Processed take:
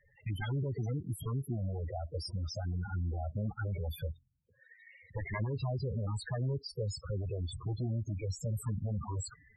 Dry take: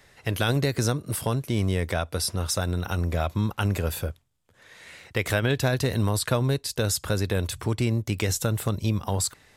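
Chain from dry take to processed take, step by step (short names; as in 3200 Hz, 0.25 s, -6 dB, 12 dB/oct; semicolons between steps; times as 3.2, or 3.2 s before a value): added harmonics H 2 -41 dB, 3 -6 dB, 8 -44 dB, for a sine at -9 dBFS; transient shaper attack +3 dB, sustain +7 dB; loudest bins only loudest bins 8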